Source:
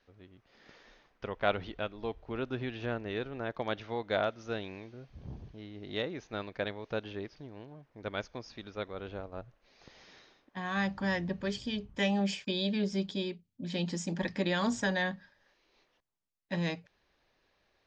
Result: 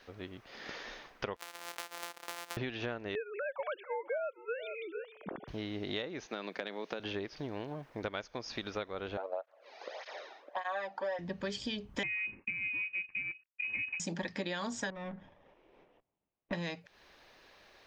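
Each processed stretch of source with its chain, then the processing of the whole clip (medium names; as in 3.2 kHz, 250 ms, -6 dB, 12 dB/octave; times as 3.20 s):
1.36–2.57 s: sorted samples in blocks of 256 samples + high-pass 710 Hz + compression 16:1, threshold -48 dBFS
3.15–5.48 s: formants replaced by sine waves + delay 448 ms -21 dB
6.26–7.00 s: elliptic high-pass 170 Hz + peaking EQ 830 Hz -3.5 dB 3 oct + compression 4:1, threshold -38 dBFS
9.17–11.19 s: resonant high-pass 590 Hz, resonance Q 3.6 + treble shelf 3.9 kHz -11 dB + cancelling through-zero flanger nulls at 1.7 Hz, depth 2 ms
12.03–14.00 s: companding laws mixed up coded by A + frequency inversion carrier 2.7 kHz + peaking EQ 690 Hz -14 dB 1.5 oct
14.90–16.53 s: comb filter that takes the minimum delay 0.34 ms + low-pass 1.2 kHz + compression 2:1, threshold -41 dBFS
whole clip: bass shelf 250 Hz -8.5 dB; compression 8:1, threshold -49 dBFS; trim +14 dB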